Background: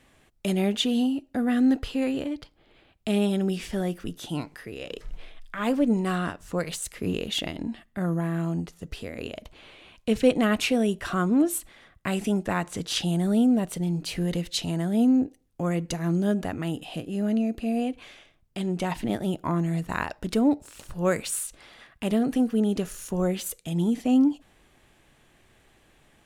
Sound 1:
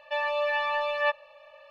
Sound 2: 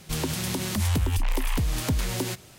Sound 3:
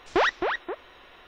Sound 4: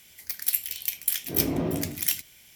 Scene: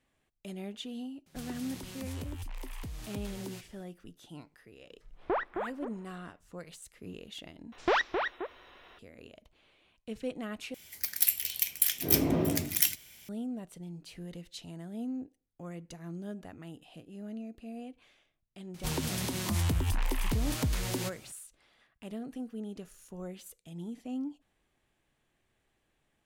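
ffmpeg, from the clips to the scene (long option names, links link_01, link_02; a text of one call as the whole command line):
ffmpeg -i bed.wav -i cue0.wav -i cue1.wav -i cue2.wav -i cue3.wav -filter_complex "[2:a]asplit=2[link_01][link_02];[3:a]asplit=2[link_03][link_04];[0:a]volume=-16.5dB[link_05];[link_03]lowpass=1300[link_06];[link_02]acontrast=58[link_07];[link_05]asplit=3[link_08][link_09][link_10];[link_08]atrim=end=7.724[link_11];[link_04]atrim=end=1.27,asetpts=PTS-STARTPTS,volume=-4.5dB[link_12];[link_09]atrim=start=8.986:end=10.744[link_13];[4:a]atrim=end=2.55,asetpts=PTS-STARTPTS,volume=-0.5dB[link_14];[link_10]atrim=start=13.286[link_15];[link_01]atrim=end=2.58,asetpts=PTS-STARTPTS,volume=-16dB,afade=type=in:duration=0.004:curve=hsin,afade=type=out:start_time=2.576:duration=0.004:curve=hsin,adelay=1260[link_16];[link_06]atrim=end=1.27,asetpts=PTS-STARTPTS,volume=-7.5dB,afade=type=in:duration=0.1,afade=type=out:start_time=1.17:duration=0.1,adelay=5140[link_17];[link_07]atrim=end=2.58,asetpts=PTS-STARTPTS,volume=-11dB,afade=type=in:duration=0.004:curve=hsin,afade=type=out:start_time=2.576:duration=0.004:curve=hsin,adelay=18740[link_18];[link_11][link_12]acrossfade=duration=0.004:curve1=hsin:curve2=hsin[link_19];[link_19][link_13]acrossfade=duration=0.004:curve1=hsin:curve2=hsin[link_20];[link_20][link_14]acrossfade=duration=0.004:curve1=hsin:curve2=hsin[link_21];[link_21][link_15]acrossfade=duration=0.004:curve1=hsin:curve2=hsin[link_22];[link_22][link_16][link_17][link_18]amix=inputs=4:normalize=0" out.wav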